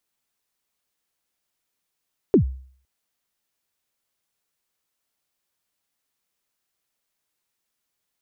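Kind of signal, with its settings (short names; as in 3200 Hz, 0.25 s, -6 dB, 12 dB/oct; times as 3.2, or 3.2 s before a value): kick drum length 0.51 s, from 450 Hz, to 65 Hz, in 0.102 s, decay 0.51 s, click off, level -8.5 dB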